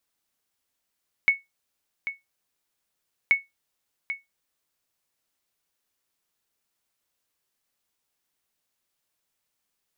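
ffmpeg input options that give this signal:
-f lavfi -i "aevalsrc='0.299*(sin(2*PI*2210*mod(t,2.03))*exp(-6.91*mod(t,2.03)/0.18)+0.266*sin(2*PI*2210*max(mod(t,2.03)-0.79,0))*exp(-6.91*max(mod(t,2.03)-0.79,0)/0.18))':d=4.06:s=44100"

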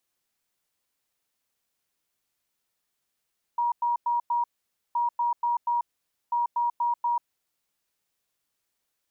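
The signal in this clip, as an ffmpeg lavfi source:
-f lavfi -i "aevalsrc='0.0794*sin(2*PI*953*t)*clip(min(mod(mod(t,1.37),0.24),0.14-mod(mod(t,1.37),0.24))/0.005,0,1)*lt(mod(t,1.37),0.96)':d=4.11:s=44100"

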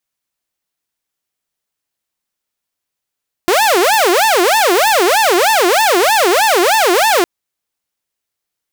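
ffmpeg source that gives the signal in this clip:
-f lavfi -i "aevalsrc='0.473*(2*mod((620.5*t-276.5/(2*PI*3.2)*sin(2*PI*3.2*t)),1)-1)':d=3.76:s=44100"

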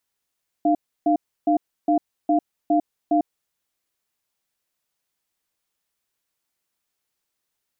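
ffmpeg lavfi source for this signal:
-f lavfi -i "aevalsrc='0.126*(sin(2*PI*303*t)+sin(2*PI*694*t))*clip(min(mod(t,0.41),0.1-mod(t,0.41))/0.005,0,1)':d=2.86:s=44100"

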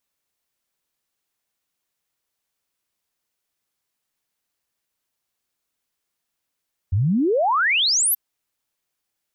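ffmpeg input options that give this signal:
-f lavfi -i "aevalsrc='0.158*clip(min(t,1.23-t)/0.01,0,1)*sin(2*PI*85*1.23/log(13000/85)*(exp(log(13000/85)*t/1.23)-1))':d=1.23:s=44100"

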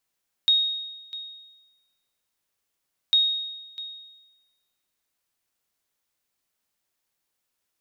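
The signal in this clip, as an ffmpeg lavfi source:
-f lavfi -i "aevalsrc='0.211*(sin(2*PI*3740*mod(t,2.65))*exp(-6.91*mod(t,2.65)/1.12)+0.133*sin(2*PI*3740*max(mod(t,2.65)-0.65,0))*exp(-6.91*max(mod(t,2.65)-0.65,0)/1.12))':d=5.3:s=44100"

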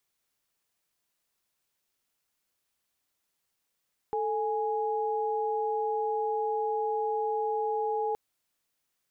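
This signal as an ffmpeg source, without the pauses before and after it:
-f lavfi -i "aevalsrc='0.0335*(sin(2*PI*440*t)+sin(2*PI*830.61*t))':d=4.02:s=44100"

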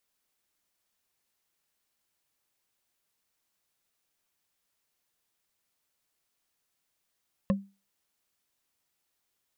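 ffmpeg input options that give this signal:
-f lavfi -i "aevalsrc='0.112*pow(10,-3*t/0.29)*sin(2*PI*197*t)+0.0631*pow(10,-3*t/0.086)*sin(2*PI*543.1*t)+0.0355*pow(10,-3*t/0.038)*sin(2*PI*1064.6*t)+0.02*pow(10,-3*t/0.021)*sin(2*PI*1759.8*t)+0.0112*pow(10,-3*t/0.013)*sin(2*PI*2628*t)':d=0.45:s=44100"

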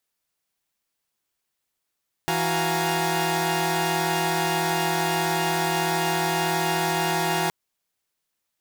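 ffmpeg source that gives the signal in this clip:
-f lavfi -i "aevalsrc='0.0501*((2*mod(164.81*t,1)-1)+(2*mod(369.99*t,1)-1)+(2*mod(698.46*t,1)-1)+(2*mod(830.61*t,1)-1)+(2*mod(932.33*t,1)-1))':d=5.22:s=44100"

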